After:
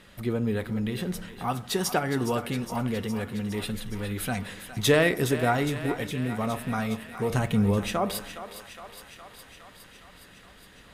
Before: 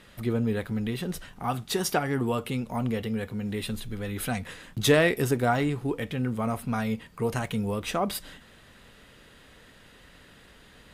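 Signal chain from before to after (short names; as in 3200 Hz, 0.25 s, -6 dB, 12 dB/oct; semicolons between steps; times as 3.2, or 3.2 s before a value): 6.1–6.33 spectral delete 500–2000 Hz; 7.3–7.9 low shelf 440 Hz +7 dB; thinning echo 0.413 s, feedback 75%, high-pass 520 Hz, level -11 dB; reverb RT60 0.85 s, pre-delay 5 ms, DRR 15 dB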